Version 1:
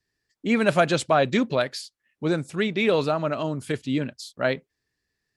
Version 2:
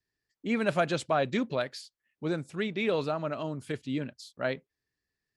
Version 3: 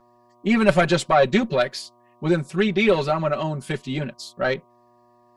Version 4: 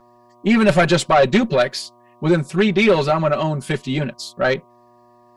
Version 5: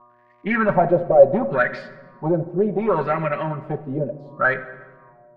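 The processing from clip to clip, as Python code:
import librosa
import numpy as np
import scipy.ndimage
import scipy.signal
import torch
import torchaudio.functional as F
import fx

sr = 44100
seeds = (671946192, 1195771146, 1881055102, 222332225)

y1 = fx.high_shelf(x, sr, hz=7000.0, db=-4.5)
y1 = y1 * librosa.db_to_amplitude(-7.0)
y2 = fx.cheby_harmonics(y1, sr, harmonics=(2,), levels_db=(-11,), full_scale_db=-13.0)
y2 = fx.dmg_buzz(y2, sr, base_hz=120.0, harmonics=10, level_db=-67.0, tilt_db=0, odd_only=False)
y2 = y2 + 0.93 * np.pad(y2, (int(5.3 * sr / 1000.0), 0))[:len(y2)]
y2 = y2 * librosa.db_to_amplitude(7.5)
y3 = 10.0 ** (-12.0 / 20.0) * np.tanh(y2 / 10.0 ** (-12.0 / 20.0))
y3 = y3 * librosa.db_to_amplitude(5.5)
y4 = fx.dmg_crackle(y3, sr, seeds[0], per_s=180.0, level_db=-44.0)
y4 = fx.filter_lfo_lowpass(y4, sr, shape='sine', hz=0.69, low_hz=520.0, high_hz=2100.0, q=5.3)
y4 = fx.room_shoebox(y4, sr, seeds[1], volume_m3=1000.0, walls='mixed', distance_m=0.47)
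y4 = y4 * librosa.db_to_amplitude(-7.5)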